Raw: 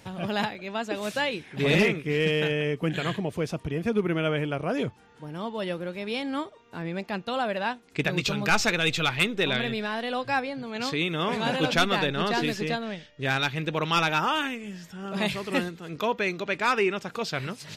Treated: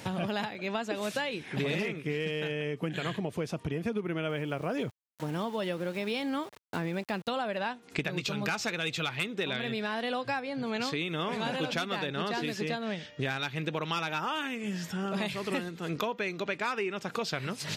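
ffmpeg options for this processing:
-filter_complex "[0:a]asettb=1/sr,asplit=3[s0][s1][s2];[s0]atrim=end=4.294[s3];[s1]atrim=start=4.29:end=7.3,asetpts=PTS-STARTPTS,afade=t=in:d=0.004:c=qsin,afade=t=out:st=3.006:d=0.004:c=qsin,aeval=exprs='val(0)*gte(abs(val(0)),0.00501)':c=same[s4];[s2]atrim=start=7.296[s5];[s3][s4]acrossfade=d=0.004:c1=hsin:c2=qsin[s6];[s6][s5]acrossfade=d=0.004:c1=qsin:c2=hsin,highpass=91,acompressor=threshold=0.0141:ratio=8,volume=2.37"

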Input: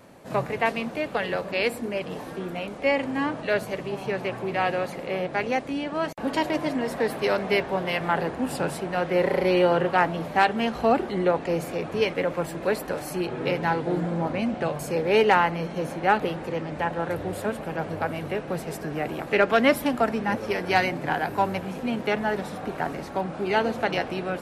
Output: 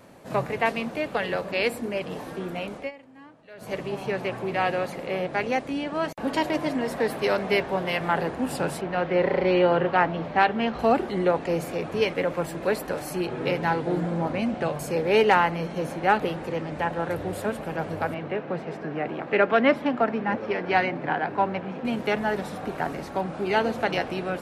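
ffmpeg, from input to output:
-filter_complex "[0:a]asettb=1/sr,asplit=3[s0][s1][s2];[s0]atrim=end=8.814[s3];[s1]atrim=start=8.81:end=10.79,asetpts=PTS-STARTPTS,afade=t=in:d=0.004:c=qsin,afade=t=out:st=1.976:d=0.004:c=qsin,lowpass=3800[s4];[s2]atrim=start=10.786[s5];[s3][s4]acrossfade=d=0.004:c1=hsin:c2=qsin[s6];[s6][s5]acrossfade=d=0.004:c1=qsin:c2=hsin,asettb=1/sr,asplit=3[s7][s8][s9];[s7]atrim=end=18.144[s10];[s8]atrim=start=18.14:end=21.85,asetpts=PTS-STARTPTS,afade=t=in:d=0.004:c=qsin,afade=t=out:st=3.706:d=0.004:c=qsin,highpass=140,lowpass=2800[s11];[s9]atrim=start=21.846[s12];[s10][s11]acrossfade=d=0.004:c1=hsin:c2=qsin[s13];[s13][s12]acrossfade=d=0.004:c1=qsin:c2=hsin,asplit=3[s14][s15][s16];[s14]atrim=end=2.91,asetpts=PTS-STARTPTS,afade=t=out:st=2.76:d=0.15:silence=0.0794328[s17];[s15]atrim=start=2.91:end=3.57,asetpts=PTS-STARTPTS,volume=0.0794[s18];[s16]atrim=start=3.57,asetpts=PTS-STARTPTS,afade=t=in:d=0.15:silence=0.0794328[s19];[s17][s18][s19]concat=n=3:v=0:a=1"

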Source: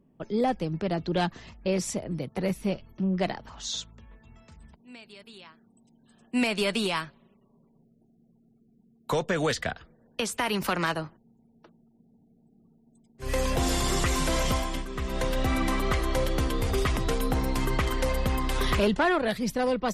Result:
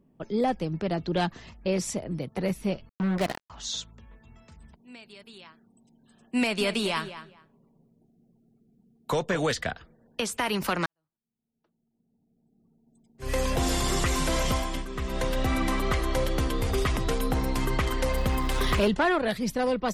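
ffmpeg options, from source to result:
-filter_complex "[0:a]asettb=1/sr,asplit=3[s0][s1][s2];[s0]atrim=end=2.894[s3];[s1]atrim=start=2.89:end=3.5,asetpts=PTS-STARTPTS,afade=t=in:d=0.004:c=qsin,afade=t=out:st=0.606:d=0.004:c=qsin,acrusher=bits=4:mix=0:aa=0.5[s4];[s2]atrim=start=3.496[s5];[s3][s4]acrossfade=d=0.004:c1=hsin:c2=qsin[s6];[s6][s5]acrossfade=d=0.004:c1=qsin:c2=hsin,asettb=1/sr,asplit=3[s7][s8][s9];[s7]atrim=end=6.394[s10];[s8]atrim=start=6.39:end=9.4,asetpts=PTS-STARTPTS,afade=t=in:d=0.004:c=qsin,afade=t=out:st=3.006:d=0.004:c=qsin,asplit=2[s11][s12];[s12]adelay=211,lowpass=f=3800:p=1,volume=0.251,asplit=2[s13][s14];[s14]adelay=211,lowpass=f=3800:p=1,volume=0.19[s15];[s11][s13][s15]amix=inputs=3:normalize=0,atrim=end_sample=132741[s16];[s9]atrim=start=9.396[s17];[s10][s16]acrossfade=d=0.004:c1=hsin:c2=qsin[s18];[s18][s17]acrossfade=d=0.004:c1=qsin:c2=hsin,asettb=1/sr,asplit=3[s19][s20][s21];[s19]atrim=end=18.134[s22];[s20]atrim=start=18.13:end=18.88,asetpts=PTS-STARTPTS,afade=t=in:d=0.004:c=qsin,afade=t=out:st=0.746:d=0.004:c=qsin,aeval=exprs='val(0)+0.5*0.01*sgn(val(0))':c=same[s23];[s21]atrim=start=18.876[s24];[s22][s23]acrossfade=d=0.004:c1=hsin:c2=qsin[s25];[s25][s24]acrossfade=d=0.004:c1=qsin:c2=hsin,asplit=2[s26][s27];[s26]atrim=end=10.86,asetpts=PTS-STARTPTS,afade=t=out:st=10.856:d=0.004:c=hsin[s28];[s27]atrim=start=10.86,asetpts=PTS-STARTPTS,afade=t=in:d=2.38:c=qua[s29];[s28][s29]concat=n=2:v=0:a=1"

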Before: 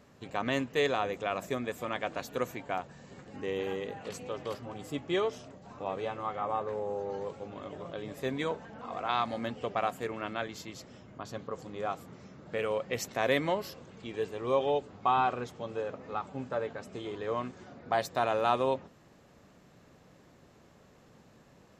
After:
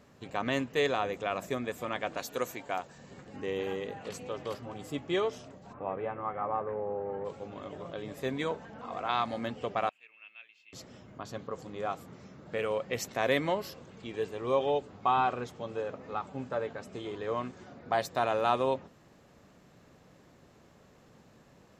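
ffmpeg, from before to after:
-filter_complex "[0:a]asettb=1/sr,asplit=3[s0][s1][s2];[s0]atrim=end=2.174[s3];[s1]atrim=start=2.17:end=2.98,asetpts=PTS-STARTPTS,afade=t=in:d=0.004:c=qsin,afade=t=out:st=0.806:d=0.004:c=qsin,bass=f=250:g=-6,treble=f=4000:g=6[s4];[s2]atrim=start=2.976[s5];[s3][s4]acrossfade=d=0.004:c1=hsin:c2=qsin[s6];[s6][s5]acrossfade=d=0.004:c1=qsin:c2=hsin,asplit=3[s7][s8][s9];[s7]afade=t=out:st=5.72:d=0.02[s10];[s8]lowpass=f=2200:w=0.5412,lowpass=f=2200:w=1.3066,afade=t=in:st=5.72:d=0.02,afade=t=out:st=7.24:d=0.02[s11];[s9]afade=t=in:st=7.24:d=0.02[s12];[s10][s11][s12]amix=inputs=3:normalize=0,asettb=1/sr,asplit=3[s13][s14][s15];[s13]atrim=end=9.894[s16];[s14]atrim=start=9.89:end=10.73,asetpts=PTS-STARTPTS,afade=t=in:d=0.004:c=qsin,afade=t=out:st=0.836:d=0.004:c=qsin,bandpass=f=2600:t=q:w=12[s17];[s15]atrim=start=10.726[s18];[s16][s17]acrossfade=d=0.004:c1=hsin:c2=qsin[s19];[s19][s18]acrossfade=d=0.004:c1=qsin:c2=hsin"

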